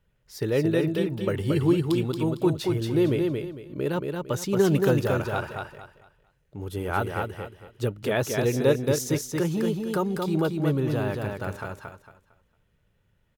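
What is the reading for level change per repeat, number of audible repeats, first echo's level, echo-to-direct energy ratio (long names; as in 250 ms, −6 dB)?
−11.0 dB, 3, −4.0 dB, −3.5 dB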